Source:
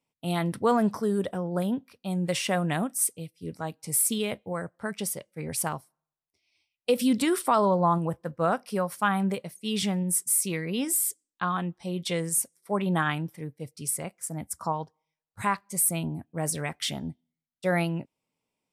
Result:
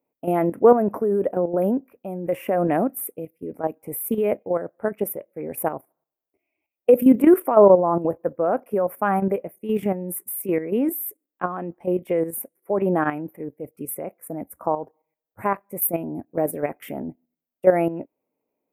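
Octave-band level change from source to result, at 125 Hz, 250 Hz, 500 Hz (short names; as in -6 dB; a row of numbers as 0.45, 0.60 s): -1.5, +6.0, +10.5 dB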